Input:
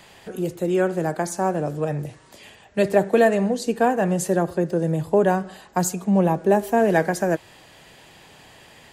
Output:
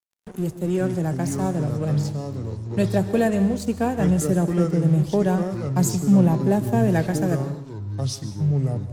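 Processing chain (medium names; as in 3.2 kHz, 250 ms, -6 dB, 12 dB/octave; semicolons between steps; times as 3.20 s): tone controls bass +15 dB, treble +7 dB; crossover distortion -34 dBFS; ever faster or slower copies 293 ms, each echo -5 st, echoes 2, each echo -6 dB; on a send: reverberation, pre-delay 122 ms, DRR 13 dB; on the sum: trim -6.5 dB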